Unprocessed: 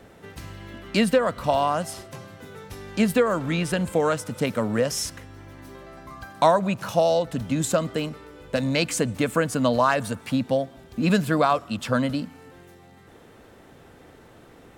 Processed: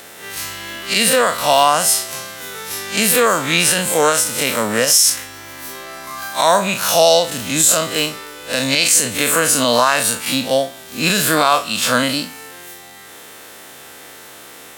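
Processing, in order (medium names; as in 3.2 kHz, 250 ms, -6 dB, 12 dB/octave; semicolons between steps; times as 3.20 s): spectral blur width 86 ms; tilt EQ +4.5 dB/octave; loudness maximiser +14 dB; trim -1 dB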